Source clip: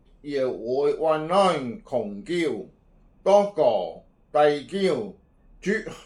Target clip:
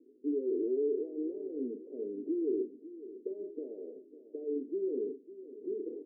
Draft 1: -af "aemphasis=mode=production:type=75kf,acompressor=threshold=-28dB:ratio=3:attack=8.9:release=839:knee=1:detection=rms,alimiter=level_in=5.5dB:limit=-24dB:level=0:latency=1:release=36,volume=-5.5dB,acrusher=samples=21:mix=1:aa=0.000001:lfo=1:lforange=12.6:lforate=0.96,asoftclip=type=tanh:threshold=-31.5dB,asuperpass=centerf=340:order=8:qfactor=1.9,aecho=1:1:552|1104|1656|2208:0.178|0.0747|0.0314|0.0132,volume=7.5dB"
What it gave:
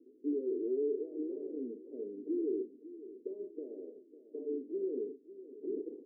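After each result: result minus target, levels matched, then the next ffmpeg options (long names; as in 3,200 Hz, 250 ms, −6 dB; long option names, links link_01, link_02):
soft clipping: distortion +18 dB; downward compressor: peak gain reduction +5.5 dB; sample-and-hold swept by an LFO: distortion +8 dB
-af "aemphasis=mode=production:type=75kf,acompressor=threshold=-28dB:ratio=3:attack=8.9:release=839:knee=1:detection=rms,alimiter=level_in=5.5dB:limit=-24dB:level=0:latency=1:release=36,volume=-5.5dB,acrusher=samples=21:mix=1:aa=0.000001:lfo=1:lforange=12.6:lforate=0.96,asoftclip=type=tanh:threshold=-21.5dB,asuperpass=centerf=340:order=8:qfactor=1.9,aecho=1:1:552|1104|1656|2208:0.178|0.0747|0.0314|0.0132,volume=7.5dB"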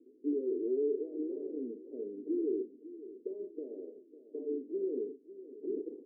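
downward compressor: peak gain reduction +5.5 dB; sample-and-hold swept by an LFO: distortion +8 dB
-af "aemphasis=mode=production:type=75kf,acompressor=threshold=-20dB:ratio=3:attack=8.9:release=839:knee=1:detection=rms,alimiter=level_in=5.5dB:limit=-24dB:level=0:latency=1:release=36,volume=-5.5dB,acrusher=samples=21:mix=1:aa=0.000001:lfo=1:lforange=12.6:lforate=0.96,asoftclip=type=tanh:threshold=-21.5dB,asuperpass=centerf=340:order=8:qfactor=1.9,aecho=1:1:552|1104|1656|2208:0.178|0.0747|0.0314|0.0132,volume=7.5dB"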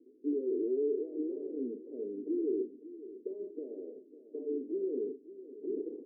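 sample-and-hold swept by an LFO: distortion +7 dB
-af "aemphasis=mode=production:type=75kf,acompressor=threshold=-20dB:ratio=3:attack=8.9:release=839:knee=1:detection=rms,alimiter=level_in=5.5dB:limit=-24dB:level=0:latency=1:release=36,volume=-5.5dB,acrusher=samples=8:mix=1:aa=0.000001:lfo=1:lforange=4.8:lforate=0.96,asoftclip=type=tanh:threshold=-21.5dB,asuperpass=centerf=340:order=8:qfactor=1.9,aecho=1:1:552|1104|1656|2208:0.178|0.0747|0.0314|0.0132,volume=7.5dB"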